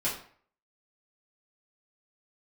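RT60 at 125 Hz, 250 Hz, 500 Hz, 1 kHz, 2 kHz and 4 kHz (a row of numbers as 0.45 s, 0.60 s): 0.50 s, 0.50 s, 0.50 s, 0.50 s, 0.50 s, 0.40 s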